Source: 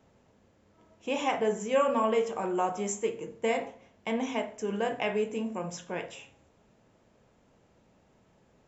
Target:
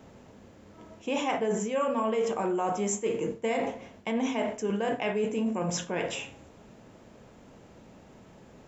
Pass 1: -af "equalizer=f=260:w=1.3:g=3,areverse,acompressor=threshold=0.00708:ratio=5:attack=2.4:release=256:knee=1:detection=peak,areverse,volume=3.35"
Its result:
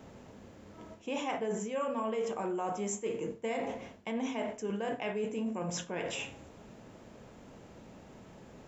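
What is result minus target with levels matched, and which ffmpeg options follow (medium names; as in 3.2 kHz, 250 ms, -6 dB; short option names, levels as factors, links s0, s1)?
compression: peak gain reduction +6 dB
-af "equalizer=f=260:w=1.3:g=3,areverse,acompressor=threshold=0.0168:ratio=5:attack=2.4:release=256:knee=1:detection=peak,areverse,volume=3.35"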